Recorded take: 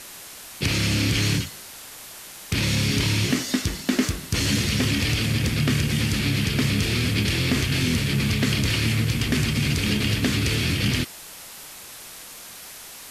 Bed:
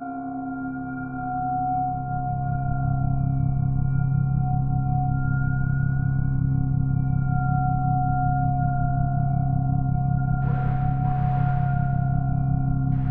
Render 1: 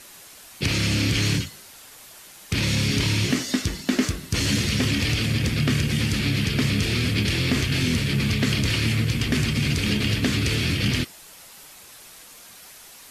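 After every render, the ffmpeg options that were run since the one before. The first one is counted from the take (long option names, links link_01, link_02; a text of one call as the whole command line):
ffmpeg -i in.wav -af "afftdn=noise_reduction=6:noise_floor=-41" out.wav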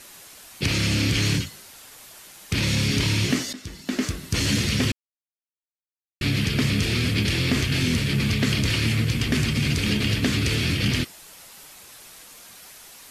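ffmpeg -i in.wav -filter_complex "[0:a]asplit=4[link_01][link_02][link_03][link_04];[link_01]atrim=end=3.53,asetpts=PTS-STARTPTS,afade=type=out:start_time=3.526:duration=0.004:curve=hsin:silence=0.133352[link_05];[link_02]atrim=start=3.53:end=4.92,asetpts=PTS-STARTPTS,afade=type=in:duration=0.75:silence=0.133352,afade=type=out:start_time=1.386:duration=0.004:curve=hsin[link_06];[link_03]atrim=start=4.92:end=6.21,asetpts=PTS-STARTPTS,volume=0[link_07];[link_04]atrim=start=6.21,asetpts=PTS-STARTPTS,afade=type=in:duration=0.004:curve=hsin[link_08];[link_05][link_06][link_07][link_08]concat=n=4:v=0:a=1" out.wav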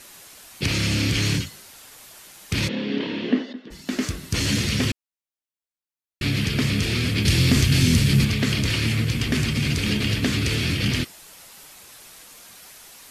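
ffmpeg -i in.wav -filter_complex "[0:a]asplit=3[link_01][link_02][link_03];[link_01]afade=type=out:start_time=2.67:duration=0.02[link_04];[link_02]highpass=frequency=230:width=0.5412,highpass=frequency=230:width=1.3066,equalizer=frequency=230:width_type=q:width=4:gain=9,equalizer=frequency=470:width_type=q:width=4:gain=7,equalizer=frequency=1300:width_type=q:width=4:gain=-7,equalizer=frequency=2300:width_type=q:width=4:gain=-10,lowpass=frequency=3000:width=0.5412,lowpass=frequency=3000:width=1.3066,afade=type=in:start_time=2.67:duration=0.02,afade=type=out:start_time=3.7:duration=0.02[link_05];[link_03]afade=type=in:start_time=3.7:duration=0.02[link_06];[link_04][link_05][link_06]amix=inputs=3:normalize=0,asettb=1/sr,asplit=3[link_07][link_08][link_09];[link_07]atrim=end=7.254[link_10];[link_08]atrim=start=7.25:end=8.25,asetpts=PTS-STARTPTS,afade=type=in:duration=0.004:curve=qsin,afade=type=out:start_time=0.996:duration=0.004:curve=qsin,bass=frequency=250:gain=7,treble=frequency=4000:gain=7[link_11];[link_09]atrim=start=8.246[link_12];[link_10][link_11]acrossfade=duration=0.004:curve1=hsin:curve2=qsin[link_13];[link_13][link_12]acrossfade=duration=0.004:curve1=qsin:curve2=hsin" out.wav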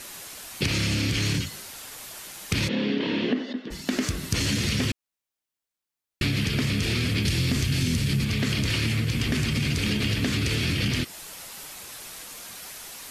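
ffmpeg -i in.wav -filter_complex "[0:a]asplit=2[link_01][link_02];[link_02]alimiter=limit=-18dB:level=0:latency=1,volume=-2.5dB[link_03];[link_01][link_03]amix=inputs=2:normalize=0,acompressor=threshold=-22dB:ratio=5" out.wav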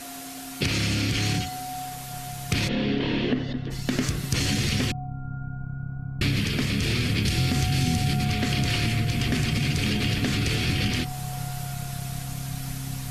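ffmpeg -i in.wav -i bed.wav -filter_complex "[1:a]volume=-10.5dB[link_01];[0:a][link_01]amix=inputs=2:normalize=0" out.wav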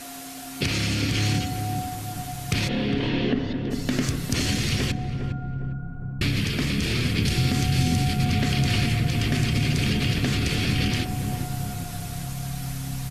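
ffmpeg -i in.wav -filter_complex "[0:a]asplit=2[link_01][link_02];[link_02]adelay=406,lowpass=frequency=800:poles=1,volume=-5dB,asplit=2[link_03][link_04];[link_04]adelay=406,lowpass=frequency=800:poles=1,volume=0.53,asplit=2[link_05][link_06];[link_06]adelay=406,lowpass=frequency=800:poles=1,volume=0.53,asplit=2[link_07][link_08];[link_08]adelay=406,lowpass=frequency=800:poles=1,volume=0.53,asplit=2[link_09][link_10];[link_10]adelay=406,lowpass=frequency=800:poles=1,volume=0.53,asplit=2[link_11][link_12];[link_12]adelay=406,lowpass=frequency=800:poles=1,volume=0.53,asplit=2[link_13][link_14];[link_14]adelay=406,lowpass=frequency=800:poles=1,volume=0.53[link_15];[link_01][link_03][link_05][link_07][link_09][link_11][link_13][link_15]amix=inputs=8:normalize=0" out.wav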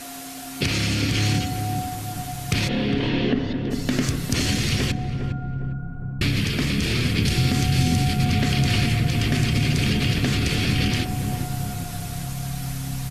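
ffmpeg -i in.wav -af "volume=2dB" out.wav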